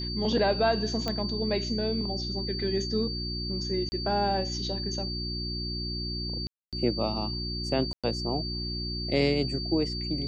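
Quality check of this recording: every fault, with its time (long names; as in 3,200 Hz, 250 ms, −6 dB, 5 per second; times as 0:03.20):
mains hum 60 Hz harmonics 6 −35 dBFS
whistle 4,600 Hz −34 dBFS
0:01.08: click −16 dBFS
0:03.89–0:03.92: drop-out 30 ms
0:06.47–0:06.73: drop-out 257 ms
0:07.93–0:08.04: drop-out 106 ms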